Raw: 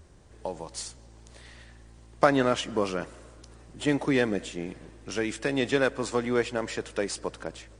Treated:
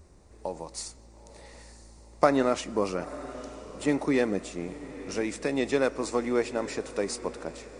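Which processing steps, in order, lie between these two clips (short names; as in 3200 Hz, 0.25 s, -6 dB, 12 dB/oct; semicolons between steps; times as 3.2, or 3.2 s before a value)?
thirty-one-band EQ 125 Hz -10 dB, 1600 Hz -7 dB, 3150 Hz -11 dB; diffused feedback echo 0.93 s, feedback 42%, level -15.5 dB; on a send at -21.5 dB: reverb RT60 0.60 s, pre-delay 30 ms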